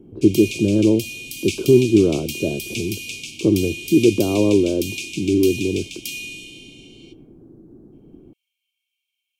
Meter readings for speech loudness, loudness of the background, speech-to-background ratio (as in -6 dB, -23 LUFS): -19.0 LUFS, -30.0 LUFS, 11.0 dB